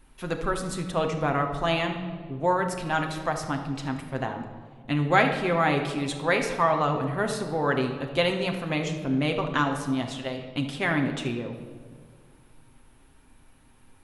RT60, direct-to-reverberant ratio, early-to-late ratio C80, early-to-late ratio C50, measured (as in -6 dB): 1.9 s, 3.0 dB, 8.5 dB, 7.0 dB